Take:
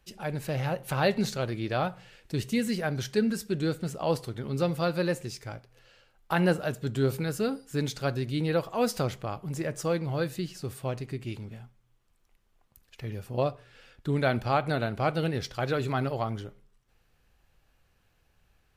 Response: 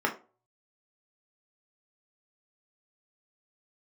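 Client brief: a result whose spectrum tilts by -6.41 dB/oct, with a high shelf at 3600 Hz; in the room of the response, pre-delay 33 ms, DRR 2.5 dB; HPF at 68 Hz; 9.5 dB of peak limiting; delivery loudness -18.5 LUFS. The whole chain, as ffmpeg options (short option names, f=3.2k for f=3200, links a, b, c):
-filter_complex "[0:a]highpass=68,highshelf=f=3.6k:g=-6,alimiter=limit=-22dB:level=0:latency=1,asplit=2[a][b];[1:a]atrim=start_sample=2205,adelay=33[c];[b][c]afir=irnorm=-1:irlink=0,volume=-13.5dB[d];[a][d]amix=inputs=2:normalize=0,volume=13dB"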